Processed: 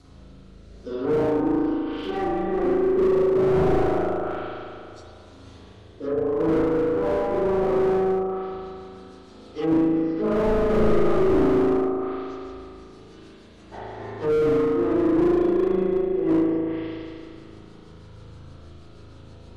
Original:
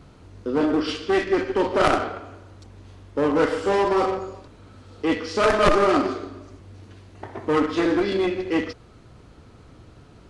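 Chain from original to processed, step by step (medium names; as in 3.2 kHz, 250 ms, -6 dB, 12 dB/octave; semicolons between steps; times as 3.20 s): resonant high shelf 3.2 kHz +6.5 dB, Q 1.5; plain phase-vocoder stretch 1.9×; rotary cabinet horn 0.7 Hz, later 6.3 Hz, at 6.98 s; spring tank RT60 2.3 s, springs 37 ms, chirp 75 ms, DRR -8.5 dB; low-pass that closes with the level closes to 920 Hz, closed at -18 dBFS; hum notches 60/120/180/240/300/360/420 Hz; slew-rate limiter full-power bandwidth 68 Hz; trim -2 dB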